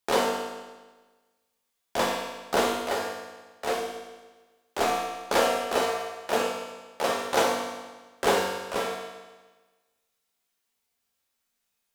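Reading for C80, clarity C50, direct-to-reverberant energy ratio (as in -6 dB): 3.5 dB, 1.5 dB, -3.0 dB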